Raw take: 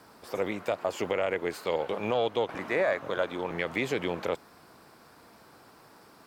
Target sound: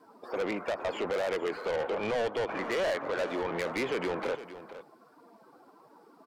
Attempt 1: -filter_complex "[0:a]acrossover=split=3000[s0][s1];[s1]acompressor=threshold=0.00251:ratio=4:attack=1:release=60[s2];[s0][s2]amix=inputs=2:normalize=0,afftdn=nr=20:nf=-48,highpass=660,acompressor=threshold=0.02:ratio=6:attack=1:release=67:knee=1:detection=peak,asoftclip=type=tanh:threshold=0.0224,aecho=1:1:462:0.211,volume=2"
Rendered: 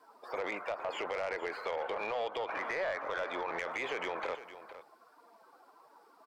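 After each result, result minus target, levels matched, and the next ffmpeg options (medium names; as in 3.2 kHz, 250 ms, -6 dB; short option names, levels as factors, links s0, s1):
compression: peak gain reduction +10.5 dB; 250 Hz band -7.0 dB
-filter_complex "[0:a]acrossover=split=3000[s0][s1];[s1]acompressor=threshold=0.00251:ratio=4:attack=1:release=60[s2];[s0][s2]amix=inputs=2:normalize=0,afftdn=nr=20:nf=-48,highpass=660,asoftclip=type=tanh:threshold=0.0224,aecho=1:1:462:0.211,volume=2"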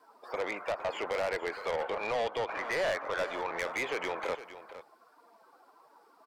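250 Hz band -7.0 dB
-filter_complex "[0:a]acrossover=split=3000[s0][s1];[s1]acompressor=threshold=0.00251:ratio=4:attack=1:release=60[s2];[s0][s2]amix=inputs=2:normalize=0,afftdn=nr=20:nf=-48,highpass=240,asoftclip=type=tanh:threshold=0.0224,aecho=1:1:462:0.211,volume=2"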